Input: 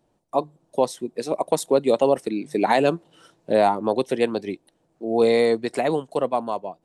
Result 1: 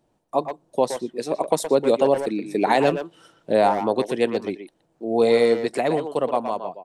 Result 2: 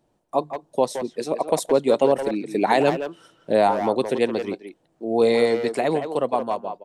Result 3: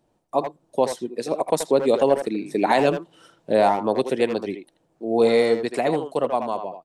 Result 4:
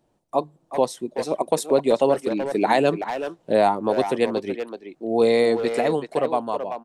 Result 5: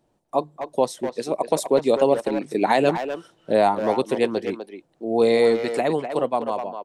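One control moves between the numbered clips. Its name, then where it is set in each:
far-end echo of a speakerphone, delay time: 120, 170, 80, 380, 250 milliseconds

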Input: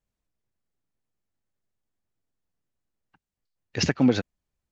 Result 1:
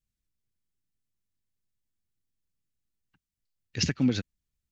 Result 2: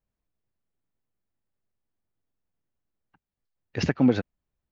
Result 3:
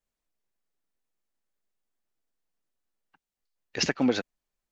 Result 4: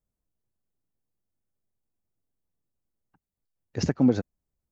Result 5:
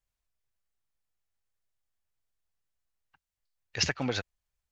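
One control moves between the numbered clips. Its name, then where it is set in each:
parametric band, centre frequency: 730, 11,000, 89, 2,900, 240 Hertz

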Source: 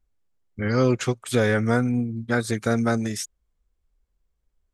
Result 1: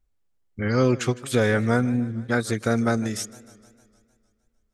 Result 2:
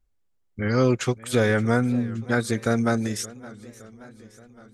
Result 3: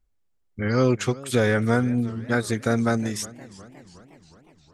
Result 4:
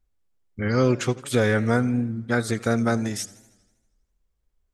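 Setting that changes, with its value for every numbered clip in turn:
feedback echo with a swinging delay time, delay time: 153, 570, 360, 80 milliseconds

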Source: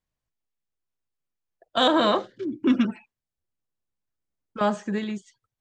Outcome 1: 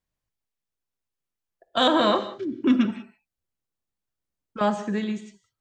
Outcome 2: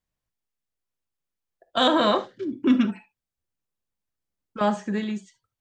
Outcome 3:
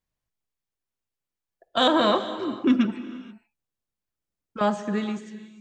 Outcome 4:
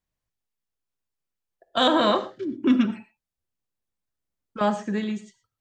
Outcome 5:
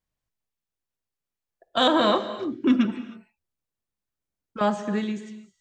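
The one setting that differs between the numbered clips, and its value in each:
reverb whose tail is shaped and stops, gate: 210, 90, 500, 140, 340 milliseconds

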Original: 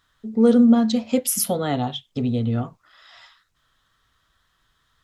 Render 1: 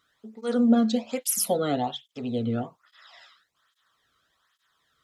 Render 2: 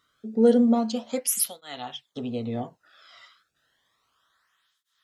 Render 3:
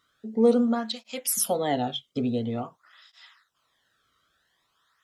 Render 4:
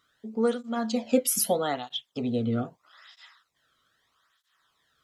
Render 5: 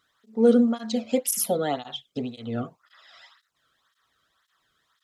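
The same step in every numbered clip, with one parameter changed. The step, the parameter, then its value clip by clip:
through-zero flanger with one copy inverted, nulls at: 1.2, 0.31, 0.48, 0.79, 1.9 Hertz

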